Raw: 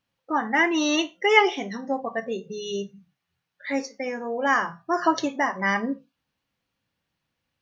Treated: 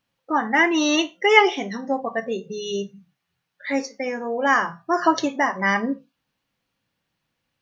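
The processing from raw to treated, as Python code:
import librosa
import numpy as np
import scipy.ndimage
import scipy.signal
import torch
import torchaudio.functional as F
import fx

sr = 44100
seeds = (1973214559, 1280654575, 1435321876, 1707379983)

y = fx.peak_eq(x, sr, hz=75.0, db=-8.0, octaves=0.45)
y = y * 10.0 ** (3.0 / 20.0)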